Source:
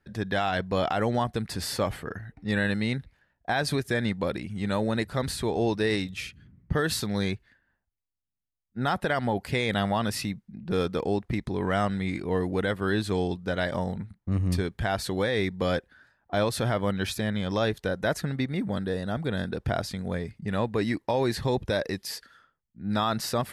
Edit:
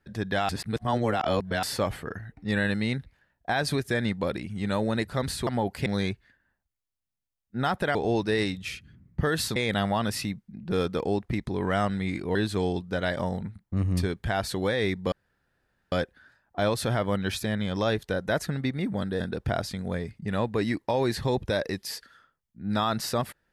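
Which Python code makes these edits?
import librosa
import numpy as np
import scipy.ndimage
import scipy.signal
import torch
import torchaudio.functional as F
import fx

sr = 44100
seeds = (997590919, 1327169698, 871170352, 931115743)

y = fx.edit(x, sr, fx.reverse_span(start_s=0.49, length_s=1.14),
    fx.swap(start_s=5.47, length_s=1.61, other_s=9.17, other_length_s=0.39),
    fx.cut(start_s=12.35, length_s=0.55),
    fx.insert_room_tone(at_s=15.67, length_s=0.8),
    fx.cut(start_s=18.95, length_s=0.45), tone=tone)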